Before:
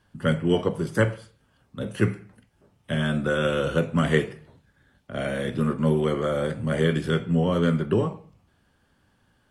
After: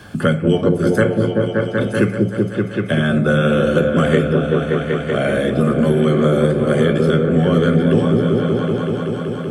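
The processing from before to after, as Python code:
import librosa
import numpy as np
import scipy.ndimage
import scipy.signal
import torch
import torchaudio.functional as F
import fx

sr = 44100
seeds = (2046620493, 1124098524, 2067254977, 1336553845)

y = fx.notch_comb(x, sr, f0_hz=950.0)
y = fx.echo_opening(y, sr, ms=191, hz=400, octaves=1, feedback_pct=70, wet_db=0)
y = fx.band_squash(y, sr, depth_pct=70)
y = y * librosa.db_to_amplitude(6.0)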